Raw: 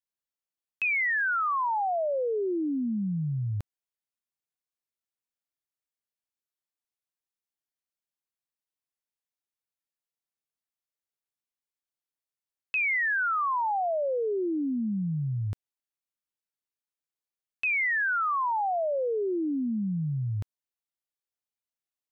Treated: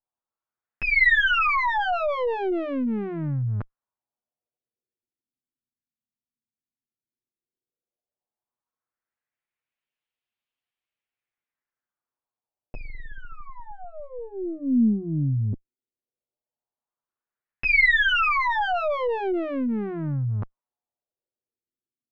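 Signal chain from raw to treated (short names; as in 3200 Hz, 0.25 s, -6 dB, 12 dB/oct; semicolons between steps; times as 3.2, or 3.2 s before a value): minimum comb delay 8.3 ms; LFO low-pass sine 0.12 Hz 220–3000 Hz; gain +4.5 dB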